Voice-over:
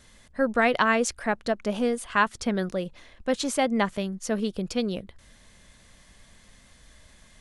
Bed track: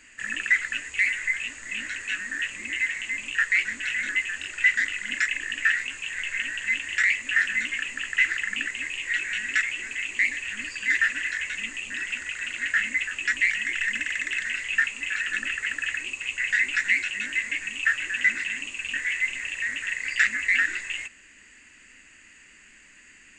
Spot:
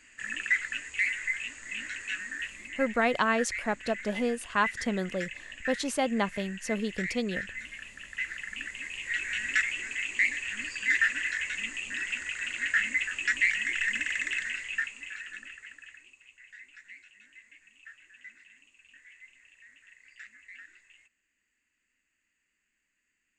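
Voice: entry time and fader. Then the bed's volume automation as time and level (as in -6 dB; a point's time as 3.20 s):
2.40 s, -4.0 dB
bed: 2.23 s -5 dB
2.98 s -14 dB
8.00 s -14 dB
9.46 s -2.5 dB
14.29 s -2.5 dB
16.40 s -27 dB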